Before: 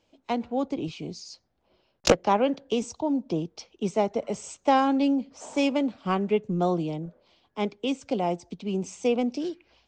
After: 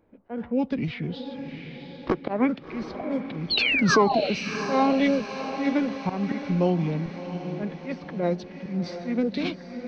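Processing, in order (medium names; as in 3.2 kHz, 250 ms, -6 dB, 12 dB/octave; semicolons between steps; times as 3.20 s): painted sound fall, 3.50–4.29 s, 700–4500 Hz -26 dBFS; peaking EQ 1.5 kHz +6.5 dB 0.55 oct; in parallel at -0.5 dB: compression, threshold -32 dBFS, peak gain reduction 18 dB; on the sum: slow attack 147 ms; level-controlled noise filter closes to 830 Hz, open at -20.5 dBFS; formant shift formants -5 st; on a send: echo that smears into a reverb 709 ms, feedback 47%, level -10 dB; on the sum: tape noise reduction on one side only encoder only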